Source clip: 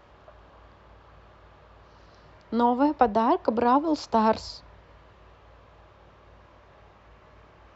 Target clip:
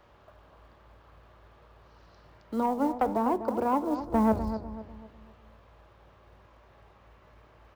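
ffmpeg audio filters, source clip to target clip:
ffmpeg -i in.wav -filter_complex "[0:a]asettb=1/sr,asplit=3[link_01][link_02][link_03];[link_01]atrim=end=4.004[link_04];[link_02]atrim=start=4:end=4.54,asetpts=PTS-STARTPTS,afade=type=in:duration=0.004:curve=qsin,afade=type=out:start_time=0.536:duration=0.004:curve=qsin,aemphasis=mode=reproduction:type=riaa[link_05];[link_03]atrim=start=4.536[link_06];[link_04][link_05]acrossfade=duration=0.004:curve1=hsin:curve2=qsin[link_07];[link_07][link_06]acrossfade=duration=0.004:curve1=qsin:curve2=hsin,acrossover=split=470|1600[link_08][link_09][link_10];[link_10]acompressor=threshold=-55dB:ratio=6[link_11];[link_08][link_09][link_11]amix=inputs=3:normalize=0,acrusher=bits=7:mode=log:mix=0:aa=0.000001,asoftclip=type=tanh:threshold=-11dB,flanger=delay=8.2:depth=3.3:regen=87:speed=1.2:shape=sinusoidal,asplit=2[link_12][link_13];[link_13]adelay=248,lowpass=frequency=1400:poles=1,volume=-9.5dB,asplit=2[link_14][link_15];[link_15]adelay=248,lowpass=frequency=1400:poles=1,volume=0.42,asplit=2[link_16][link_17];[link_17]adelay=248,lowpass=frequency=1400:poles=1,volume=0.42,asplit=2[link_18][link_19];[link_19]adelay=248,lowpass=frequency=1400:poles=1,volume=0.42,asplit=2[link_20][link_21];[link_21]adelay=248,lowpass=frequency=1400:poles=1,volume=0.42[link_22];[link_14][link_16][link_18][link_20][link_22]amix=inputs=5:normalize=0[link_23];[link_12][link_23]amix=inputs=2:normalize=0" out.wav

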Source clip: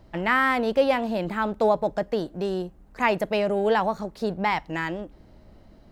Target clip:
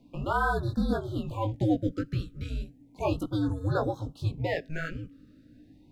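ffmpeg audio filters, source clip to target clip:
ffmpeg -i in.wav -af "afreqshift=-320,flanger=delay=16:depth=4.3:speed=1.8,afftfilt=real='re*(1-between(b*sr/1024,820*pow(2500/820,0.5+0.5*sin(2*PI*0.34*pts/sr))/1.41,820*pow(2500/820,0.5+0.5*sin(2*PI*0.34*pts/sr))*1.41))':imag='im*(1-between(b*sr/1024,820*pow(2500/820,0.5+0.5*sin(2*PI*0.34*pts/sr))/1.41,820*pow(2500/820,0.5+0.5*sin(2*PI*0.34*pts/sr))*1.41))':win_size=1024:overlap=0.75,volume=-1.5dB" out.wav

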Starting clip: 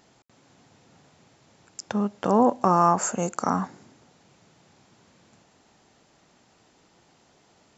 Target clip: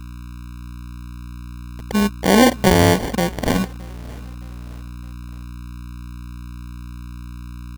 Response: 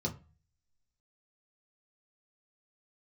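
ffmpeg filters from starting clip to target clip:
-filter_complex "[0:a]anlmdn=1.58,tiltshelf=frequency=1200:gain=3.5,aeval=exprs='val(0)+0.0141*(sin(2*PI*60*n/s)+sin(2*PI*2*60*n/s)/2+sin(2*PI*3*60*n/s)/3+sin(2*PI*4*60*n/s)/4+sin(2*PI*5*60*n/s)/5)':channel_layout=same,acrusher=samples=34:mix=1:aa=0.000001,asplit=2[link_01][link_02];[link_02]aecho=0:1:617|1234|1851:0.0668|0.0301|0.0135[link_03];[link_01][link_03]amix=inputs=2:normalize=0,volume=4.5dB"

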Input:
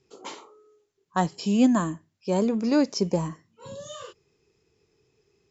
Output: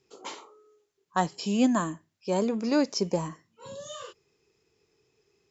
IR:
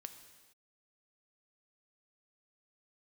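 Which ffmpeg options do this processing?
-af "lowshelf=frequency=280:gain=-7"

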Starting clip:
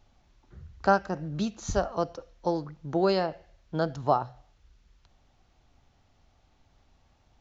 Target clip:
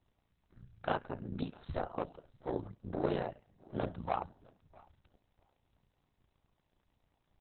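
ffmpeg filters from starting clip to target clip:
ffmpeg -i in.wav -filter_complex "[0:a]aeval=exprs='val(0)*sin(2*PI*44*n/s)':channel_layout=same,asoftclip=type=tanh:threshold=-21dB,asettb=1/sr,asplit=3[link_01][link_02][link_03];[link_01]atrim=end=2.024[link_04];[link_02]atrim=start=2.02:end=4.04,asetpts=PTS-STARTPTS,afade=type=in:duration=0.004:curve=qsin,afade=type=out:start_time=2.016:duration=0.004:curve=qsin,adynamicequalizer=threshold=0.00316:dfrequency=120:dqfactor=1.3:tfrequency=120:tqfactor=1.3:attack=5:release=100:ratio=0.375:range=2:mode=boostabove:tftype=bell[link_05];[link_03]atrim=start=4.036[link_06];[link_04][link_05]acrossfade=duration=0.004:curve1=hsin:curve2=qsin[link_07];[link_07][link_06]acrossfade=duration=0.004:curve1=qsin:curve2=hsin,tremolo=f=59:d=0.75,aecho=1:1:653|1306:0.0708|0.0142" -ar 48000 -c:a libopus -b:a 6k out.opus

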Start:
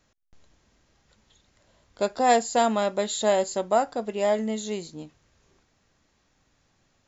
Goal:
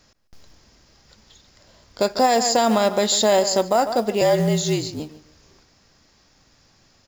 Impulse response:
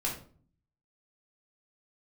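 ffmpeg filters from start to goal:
-filter_complex "[0:a]equalizer=frequency=5000:width_type=o:width=0.37:gain=10.5,asplit=2[link_01][link_02];[link_02]adelay=146,lowpass=frequency=3300:poles=1,volume=-15dB,asplit=2[link_03][link_04];[link_04]adelay=146,lowpass=frequency=3300:poles=1,volume=0.26,asplit=2[link_05][link_06];[link_06]adelay=146,lowpass=frequency=3300:poles=1,volume=0.26[link_07];[link_01][link_03][link_05][link_07]amix=inputs=4:normalize=0,acrusher=bits=6:mode=log:mix=0:aa=0.000001,asettb=1/sr,asplit=3[link_08][link_09][link_10];[link_08]atrim=end=4.214[link_11];[link_09]atrim=start=4.21:end=5,asetpts=PTS-STARTPTS,afade=type=in:duration=0.004:curve=qsin,afade=type=out:start_time=0.786:duration=0.004:curve=qsin,afreqshift=-46[link_12];[link_10]atrim=start=4.996[link_13];[link_11][link_12]acrossfade=duration=0.004:curve1=hsin:curve2=qsin[link_14];[link_14][link_13]acrossfade=duration=0.004:curve1=qsin:curve2=hsin,alimiter=level_in=16dB:limit=-1dB:release=50:level=0:latency=1,volume=-7.5dB"

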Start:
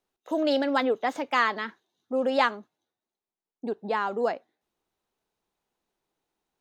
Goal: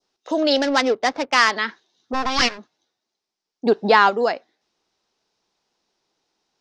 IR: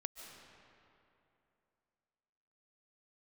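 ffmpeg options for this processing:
-filter_complex "[0:a]asplit=3[link_01][link_02][link_03];[link_01]afade=type=out:start_time=2.13:duration=0.02[link_04];[link_02]aeval=exprs='abs(val(0))':channel_layout=same,afade=type=in:start_time=2.13:duration=0.02,afade=type=out:start_time=2.57:duration=0.02[link_05];[link_03]afade=type=in:start_time=2.57:duration=0.02[link_06];[link_04][link_05][link_06]amix=inputs=3:normalize=0,lowshelf=frequency=93:gain=-10,asplit=2[link_07][link_08];[link_08]alimiter=limit=-21dB:level=0:latency=1:release=345,volume=0dB[link_09];[link_07][link_09]amix=inputs=2:normalize=0,asplit=3[link_10][link_11][link_12];[link_10]afade=type=out:start_time=3.65:duration=0.02[link_13];[link_11]acontrast=87,afade=type=in:start_time=3.65:duration=0.02,afade=type=out:start_time=4.09:duration=0.02[link_14];[link_12]afade=type=in:start_time=4.09:duration=0.02[link_15];[link_13][link_14][link_15]amix=inputs=3:normalize=0,adynamicequalizer=threshold=0.0316:dfrequency=2100:dqfactor=1.1:tfrequency=2100:tqfactor=1.1:attack=5:release=100:ratio=0.375:range=2:mode=boostabove:tftype=bell,asettb=1/sr,asplit=3[link_16][link_17][link_18];[link_16]atrim=end=0.564[link_19];[link_17]atrim=start=0.56:end=1.51,asetpts=PTS-STARTPTS,afade=type=in:duration=0.004:curve=qsin,afade=type=out:start_time=0.946:duration=0.004:curve=qsin,adynamicsmooth=sensitivity=4:basefreq=520[link_20];[link_18]atrim=start=1.506[link_21];[link_19][link_20]acrossfade=duration=0.004:curve1=hsin:curve2=qsin[link_22];[link_22][link_21]acrossfade=duration=0.004:curve1=qsin:curve2=hsin,lowpass=frequency=5300:width_type=q:width=3.7,volume=1.5dB"

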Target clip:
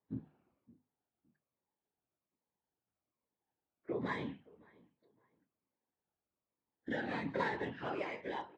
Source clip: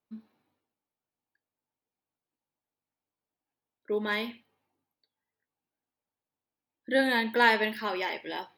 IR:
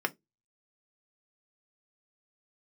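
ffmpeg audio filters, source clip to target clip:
-filter_complex "[0:a]afftfilt=real='re*pow(10,9/40*sin(2*PI*(1*log(max(b,1)*sr/1024/100)/log(2)-(-1.2)*(pts-256)/sr)))':imag='im*pow(10,9/40*sin(2*PI*(1*log(max(b,1)*sr/1024/100)/log(2)-(-1.2)*(pts-256)/sr)))':win_size=1024:overlap=0.75,acompressor=threshold=-37dB:ratio=3,lowshelf=frequency=160:gain=-9.5,aresample=16000,aresample=44100,aemphasis=mode=reproduction:type=bsi,asplit=2[link_01][link_02];[link_02]adelay=565,lowpass=frequency=2400:poles=1,volume=-23.5dB,asplit=2[link_03][link_04];[link_04]adelay=565,lowpass=frequency=2400:poles=1,volume=0.27[link_05];[link_01][link_03][link_05]amix=inputs=3:normalize=0,adynamicsmooth=sensitivity=3.5:basefreq=2700,afftfilt=real='hypot(re,im)*cos(2*PI*random(0))':imag='hypot(re,im)*sin(2*PI*random(1))':win_size=512:overlap=0.75,highpass=64,bandreject=frequency=50:width_type=h:width=6,bandreject=frequency=100:width_type=h:width=6,bandreject=frequency=150:width_type=h:width=6,bandreject=frequency=200:width_type=h:width=6,bandreject=frequency=250:width_type=h:width=6,asplit=2[link_06][link_07];[link_07]adelay=26,volume=-14dB[link_08];[link_06][link_08]amix=inputs=2:normalize=0,volume=5dB" -ar 24000 -c:a aac -b:a 32k

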